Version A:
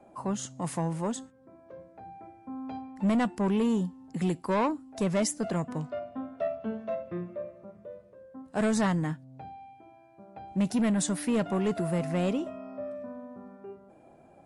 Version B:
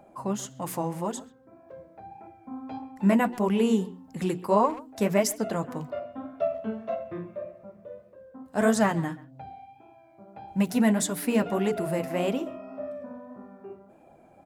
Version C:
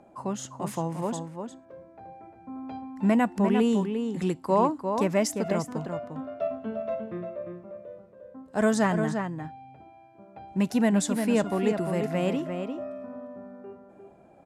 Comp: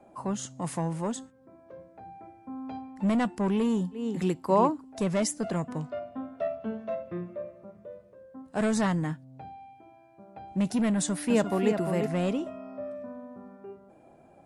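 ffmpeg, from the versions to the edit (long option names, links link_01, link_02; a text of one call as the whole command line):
ffmpeg -i take0.wav -i take1.wav -i take2.wav -filter_complex "[2:a]asplit=2[link_01][link_02];[0:a]asplit=3[link_03][link_04][link_05];[link_03]atrim=end=4.07[link_06];[link_01]atrim=start=3.91:end=4.85[link_07];[link_04]atrim=start=4.69:end=11.302[link_08];[link_02]atrim=start=11.298:end=12.082[link_09];[link_05]atrim=start=12.078[link_10];[link_06][link_07]acrossfade=duration=0.16:curve1=tri:curve2=tri[link_11];[link_11][link_08]acrossfade=duration=0.16:curve1=tri:curve2=tri[link_12];[link_12][link_09]acrossfade=duration=0.004:curve1=hsin:curve2=hsin[link_13];[link_13][link_10]acrossfade=duration=0.004:curve1=hsin:curve2=hsin" out.wav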